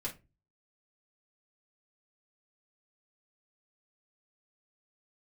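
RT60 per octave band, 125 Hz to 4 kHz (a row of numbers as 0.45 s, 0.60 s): 0.55 s, 0.40 s, 0.30 s, 0.20 s, 0.20 s, 0.20 s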